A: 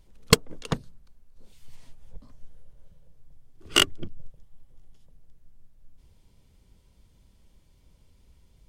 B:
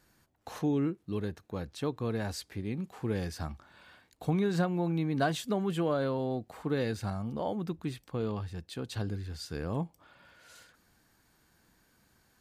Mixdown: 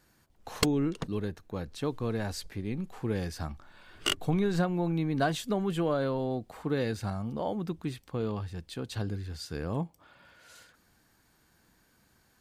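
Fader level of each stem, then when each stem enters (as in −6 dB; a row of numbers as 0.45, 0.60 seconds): −9.5, +1.0 decibels; 0.30, 0.00 seconds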